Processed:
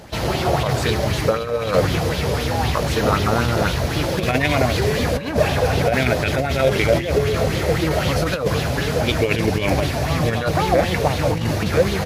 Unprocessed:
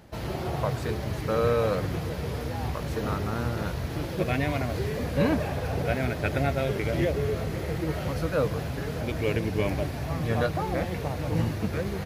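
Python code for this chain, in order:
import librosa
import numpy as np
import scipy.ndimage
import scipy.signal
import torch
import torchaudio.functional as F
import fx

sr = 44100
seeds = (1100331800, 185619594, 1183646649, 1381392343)

y = fx.over_compress(x, sr, threshold_db=-27.0, ratio=-0.5)
y = fx.peak_eq(y, sr, hz=6400.0, db=6.5, octaves=2.0)
y = fx.bell_lfo(y, sr, hz=3.9, low_hz=510.0, high_hz=3600.0, db=9)
y = y * 10.0 ** (8.0 / 20.0)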